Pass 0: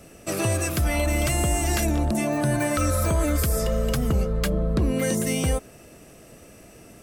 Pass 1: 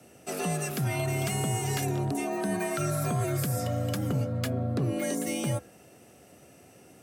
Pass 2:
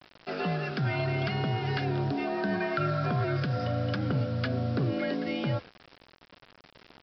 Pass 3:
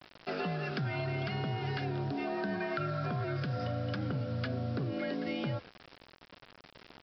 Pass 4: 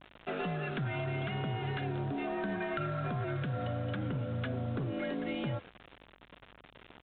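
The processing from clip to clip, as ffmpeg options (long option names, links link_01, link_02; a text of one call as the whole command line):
ffmpeg -i in.wav -af "bandreject=frequency=143:width_type=h:width=4,bandreject=frequency=286:width_type=h:width=4,bandreject=frequency=429:width_type=h:width=4,bandreject=frequency=572:width_type=h:width=4,bandreject=frequency=715:width_type=h:width=4,bandreject=frequency=858:width_type=h:width=4,bandreject=frequency=1001:width_type=h:width=4,bandreject=frequency=1144:width_type=h:width=4,bandreject=frequency=1287:width_type=h:width=4,bandreject=frequency=1430:width_type=h:width=4,bandreject=frequency=1573:width_type=h:width=4,bandreject=frequency=1716:width_type=h:width=4,bandreject=frequency=1859:width_type=h:width=4,bandreject=frequency=2002:width_type=h:width=4,bandreject=frequency=2145:width_type=h:width=4,bandreject=frequency=2288:width_type=h:width=4,bandreject=frequency=2431:width_type=h:width=4,afreqshift=64,volume=-6.5dB" out.wav
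ffmpeg -i in.wav -af "equalizer=frequency=1500:width=4.8:gain=9,aresample=11025,acrusher=bits=7:mix=0:aa=0.000001,aresample=44100" out.wav
ffmpeg -i in.wav -af "acompressor=threshold=-32dB:ratio=4" out.wav
ffmpeg -i in.wav -af "aresample=8000,aeval=exprs='clip(val(0),-1,0.0282)':channel_layout=same,aresample=44100,aeval=exprs='val(0)+0.000447*(sin(2*PI*50*n/s)+sin(2*PI*2*50*n/s)/2+sin(2*PI*3*50*n/s)/3+sin(2*PI*4*50*n/s)/4+sin(2*PI*5*50*n/s)/5)':channel_layout=same" out.wav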